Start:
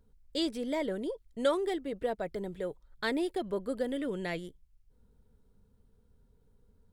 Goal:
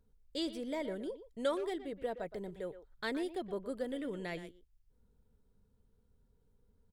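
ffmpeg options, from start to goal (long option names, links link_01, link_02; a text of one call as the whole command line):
ffmpeg -i in.wav -filter_complex "[0:a]asplit=2[link_01][link_02];[link_02]adelay=120,highpass=300,lowpass=3400,asoftclip=type=hard:threshold=-24.5dB,volume=-12dB[link_03];[link_01][link_03]amix=inputs=2:normalize=0,volume=-5.5dB" out.wav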